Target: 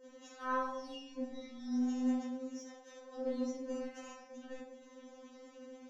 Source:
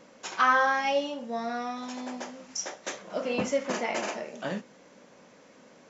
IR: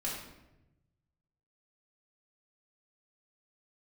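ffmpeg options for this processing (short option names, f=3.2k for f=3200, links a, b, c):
-filter_complex "[0:a]asplit=2[a][b];[b]asoftclip=type=tanh:threshold=-28.5dB,volume=-4dB[c];[a][c]amix=inputs=2:normalize=0,acompressor=threshold=-43dB:ratio=3,adynamicequalizer=threshold=0.00141:dfrequency=3000:dqfactor=0.71:tfrequency=3000:tqfactor=0.71:attack=5:release=100:ratio=0.375:range=3:mode=cutabove:tftype=bell,alimiter=level_in=13dB:limit=-24dB:level=0:latency=1:release=103,volume=-13dB,agate=range=-13dB:threshold=-44dB:ratio=16:detection=peak[d];[1:a]atrim=start_sample=2205,asetrate=74970,aresample=44100[e];[d][e]afir=irnorm=-1:irlink=0,afftfilt=real='re*3.46*eq(mod(b,12),0)':imag='im*3.46*eq(mod(b,12),0)':win_size=2048:overlap=0.75,volume=9dB"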